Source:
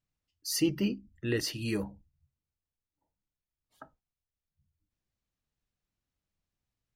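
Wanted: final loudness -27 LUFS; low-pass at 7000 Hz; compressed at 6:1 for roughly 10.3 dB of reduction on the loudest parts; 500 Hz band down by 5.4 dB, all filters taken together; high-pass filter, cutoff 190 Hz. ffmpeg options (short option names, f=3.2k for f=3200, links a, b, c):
-af "highpass=190,lowpass=7k,equalizer=f=500:t=o:g=-8,acompressor=threshold=-36dB:ratio=6,volume=14dB"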